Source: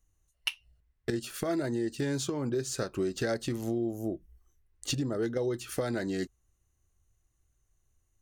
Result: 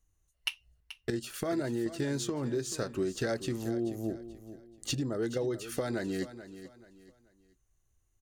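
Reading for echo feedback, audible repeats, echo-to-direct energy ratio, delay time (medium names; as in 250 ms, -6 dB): 32%, 3, -13.0 dB, 433 ms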